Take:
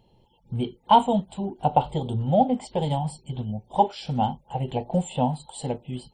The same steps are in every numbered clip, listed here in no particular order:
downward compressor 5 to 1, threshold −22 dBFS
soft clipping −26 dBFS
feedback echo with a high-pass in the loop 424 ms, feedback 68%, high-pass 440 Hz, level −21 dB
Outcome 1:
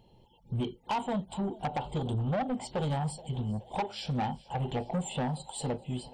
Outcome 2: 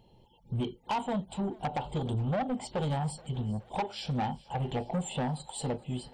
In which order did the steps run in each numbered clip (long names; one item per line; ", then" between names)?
downward compressor, then feedback echo with a high-pass in the loop, then soft clipping
downward compressor, then soft clipping, then feedback echo with a high-pass in the loop